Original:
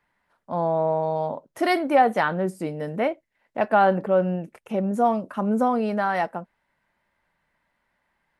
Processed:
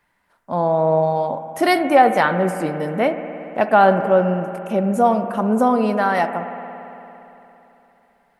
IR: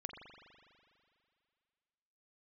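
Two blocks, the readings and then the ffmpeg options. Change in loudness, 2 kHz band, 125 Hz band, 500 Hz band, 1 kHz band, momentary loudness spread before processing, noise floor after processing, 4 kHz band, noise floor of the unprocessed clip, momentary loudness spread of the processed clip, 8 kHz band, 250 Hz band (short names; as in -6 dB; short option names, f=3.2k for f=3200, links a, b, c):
+5.5 dB, +5.5 dB, +5.5 dB, +5.5 dB, +5.5 dB, 12 LU, -63 dBFS, +6.0 dB, -75 dBFS, 13 LU, n/a, +5.0 dB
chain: -filter_complex "[0:a]asplit=2[a][b];[1:a]atrim=start_sample=2205,asetrate=32193,aresample=44100,highshelf=f=5.4k:g=11[c];[b][c]afir=irnorm=-1:irlink=0,volume=0.5dB[d];[a][d]amix=inputs=2:normalize=0"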